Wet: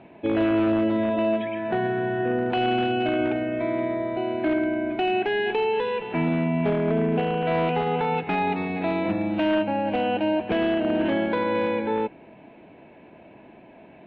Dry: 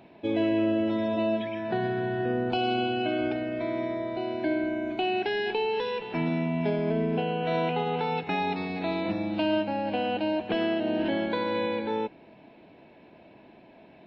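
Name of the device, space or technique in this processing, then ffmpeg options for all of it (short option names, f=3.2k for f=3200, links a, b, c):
synthesiser wavefolder: -filter_complex "[0:a]asettb=1/sr,asplit=3[a][b][c];[a]atrim=end=1.104[d];[b]atrim=start=1.1:end=2.57,asetpts=PTS-STARTPTS,afade=t=in:d=0.004:c=qsin,afade=t=out:st=1.466:d=0.004:c=qsin,lowshelf=f=150:g=-6[e];[c]atrim=start=2.566[f];[d][e]acrossfade=d=0.004:c1=hsin:c2=qsin[g];[g][f]acrossfade=d=0.004:c1=qsin:c2=hsin,aeval=exprs='0.0944*(abs(mod(val(0)/0.0944+3,4)-2)-1)':c=same,lowpass=f=3k:w=0.5412,lowpass=f=3k:w=1.3066,volume=4.5dB"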